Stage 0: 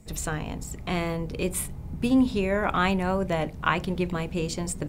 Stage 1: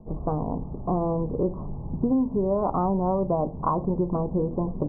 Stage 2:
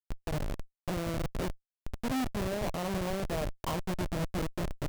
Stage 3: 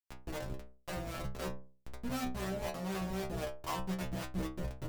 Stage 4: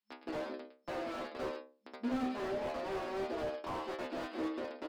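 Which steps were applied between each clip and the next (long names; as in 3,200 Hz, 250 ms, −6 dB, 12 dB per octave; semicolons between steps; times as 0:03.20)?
Butterworth low-pass 1,100 Hz 72 dB per octave; parametric band 66 Hz −7.5 dB 1.8 octaves; downward compressor 5 to 1, threshold −28 dBFS, peak gain reduction 10 dB; level +7.5 dB
comparator with hysteresis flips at −23.5 dBFS; dynamic equaliser 610 Hz, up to +6 dB, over −48 dBFS, Q 4; brickwall limiter −27.5 dBFS, peak gain reduction 9 dB
two-band tremolo in antiphase 3.9 Hz, depth 70%, crossover 440 Hz; stiff-string resonator 62 Hz, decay 0.46 s, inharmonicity 0.002; level +8 dB
single-tap delay 110 ms −13 dB; brick-wall band-pass 210–5,300 Hz; slew-rate limiting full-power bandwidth 6.9 Hz; level +5 dB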